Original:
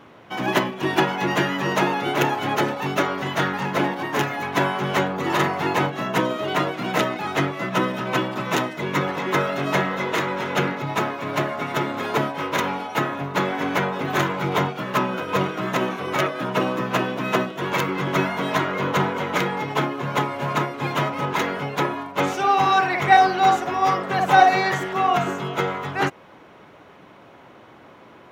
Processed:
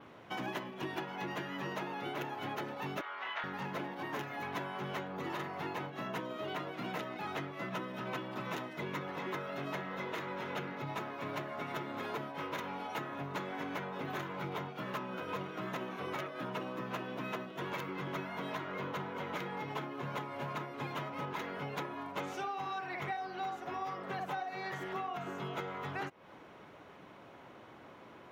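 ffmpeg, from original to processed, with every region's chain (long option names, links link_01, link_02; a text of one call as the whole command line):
ffmpeg -i in.wav -filter_complex "[0:a]asettb=1/sr,asplit=3[link_01][link_02][link_03];[link_01]atrim=end=3.014[link_04];[link_02]atrim=start=3.01:end=3.44,asetpts=PTS-STARTPTS,afade=type=in:duration=0.004:curve=qsin,afade=type=out:start_time=0.426:duration=0.004:curve=qsin,asuperpass=centerf=1700:order=4:qfactor=0.69,asplit=2[link_05][link_06];[link_06]adelay=26,volume=-5.5dB[link_07];[link_05][link_07]amix=inputs=2:normalize=0,atrim=end_sample=18963[link_08];[link_03]atrim=start=3.436[link_09];[link_04][link_08]acrossfade=duration=0.004:curve1=hsin:curve2=qsin[link_10];[link_10][link_09]acrossfade=duration=0.004:curve1=qsin:curve2=hsin,adynamicequalizer=threshold=0.00282:dfrequency=7600:dqfactor=1.5:tfrequency=7600:tqfactor=1.5:attack=5:release=100:ratio=0.375:range=3:mode=cutabove:tftype=bell,acompressor=threshold=-29dB:ratio=12,volume=-7dB" out.wav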